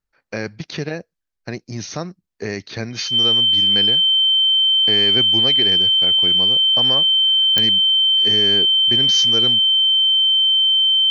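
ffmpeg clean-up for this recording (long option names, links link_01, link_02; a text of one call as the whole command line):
ffmpeg -i in.wav -af "adeclick=threshold=4,bandreject=frequency=3100:width=30" out.wav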